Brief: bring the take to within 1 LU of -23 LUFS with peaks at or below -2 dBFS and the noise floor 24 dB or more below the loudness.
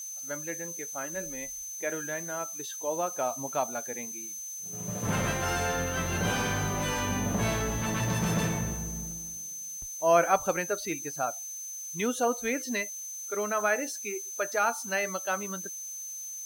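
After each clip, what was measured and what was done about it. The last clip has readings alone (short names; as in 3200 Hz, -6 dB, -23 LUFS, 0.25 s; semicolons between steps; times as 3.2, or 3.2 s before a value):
steady tone 6200 Hz; tone level -37 dBFS; noise floor -40 dBFS; noise floor target -55 dBFS; loudness -30.5 LUFS; peak -10.5 dBFS; loudness target -23.0 LUFS
-> notch 6200 Hz, Q 30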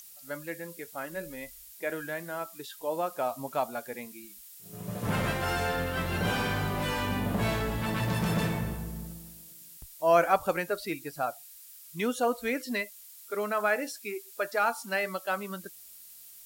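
steady tone none; noise floor -50 dBFS; noise floor target -55 dBFS
-> denoiser 6 dB, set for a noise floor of -50 dBFS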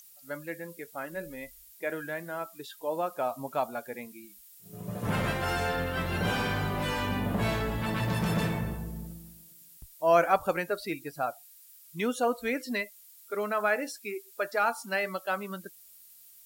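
noise floor -54 dBFS; noise floor target -55 dBFS
-> denoiser 6 dB, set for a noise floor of -54 dBFS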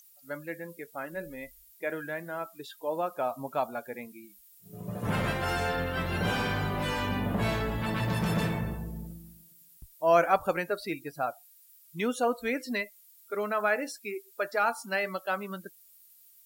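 noise floor -58 dBFS; loudness -31.0 LUFS; peak -10.5 dBFS; loudness target -23.0 LUFS
-> gain +8 dB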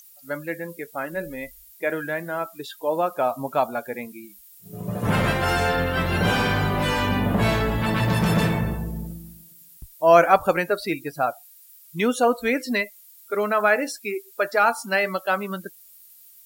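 loudness -23.0 LUFS; peak -2.5 dBFS; noise floor -50 dBFS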